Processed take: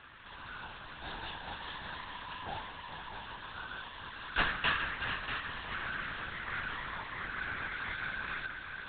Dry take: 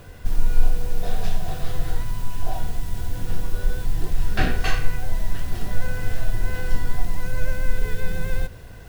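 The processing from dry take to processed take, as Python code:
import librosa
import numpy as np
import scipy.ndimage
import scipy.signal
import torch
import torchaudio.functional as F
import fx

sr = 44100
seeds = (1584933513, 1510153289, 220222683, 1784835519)

y = scipy.signal.sosfilt(scipy.signal.butter(4, 900.0, 'highpass', fs=sr, output='sos'), x)
y = fx.notch(y, sr, hz=2300.0, q=6.3)
y = fx.echo_heads(y, sr, ms=213, heads='second and third', feedback_pct=50, wet_db=-9.0)
y = fx.lpc_vocoder(y, sr, seeds[0], excitation='whisper', order=8)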